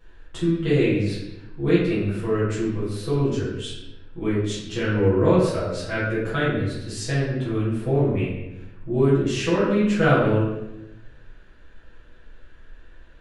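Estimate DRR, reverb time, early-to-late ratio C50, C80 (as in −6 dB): −11.0 dB, 0.95 s, 0.5 dB, 4.0 dB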